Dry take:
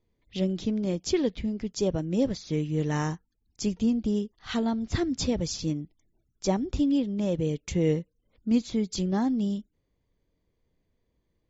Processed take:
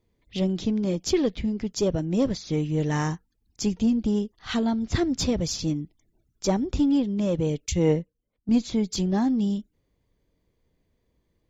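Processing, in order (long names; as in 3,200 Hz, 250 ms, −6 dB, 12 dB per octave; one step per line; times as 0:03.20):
one-sided soft clipper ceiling −16.5 dBFS
0:07.66–0:08.49: multiband upward and downward expander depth 100%
level +4 dB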